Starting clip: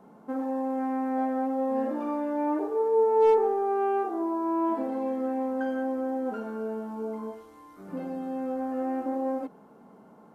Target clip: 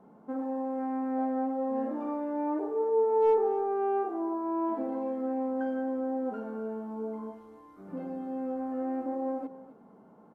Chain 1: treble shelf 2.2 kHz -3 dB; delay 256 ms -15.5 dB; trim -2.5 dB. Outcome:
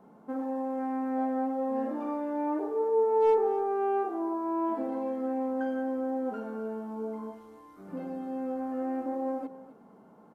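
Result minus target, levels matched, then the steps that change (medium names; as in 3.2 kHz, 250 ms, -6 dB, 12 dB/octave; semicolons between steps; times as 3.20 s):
4 kHz band +5.0 dB
change: treble shelf 2.2 kHz -10.5 dB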